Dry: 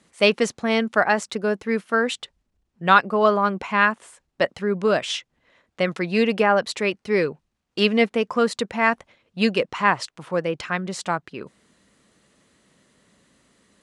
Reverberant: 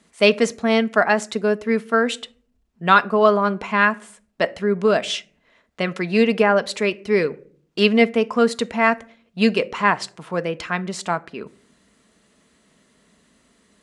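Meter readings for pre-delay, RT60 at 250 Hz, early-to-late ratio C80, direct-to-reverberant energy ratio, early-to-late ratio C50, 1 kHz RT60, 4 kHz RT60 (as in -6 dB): 3 ms, 0.80 s, 26.5 dB, 10.5 dB, 22.5 dB, 0.45 s, 0.25 s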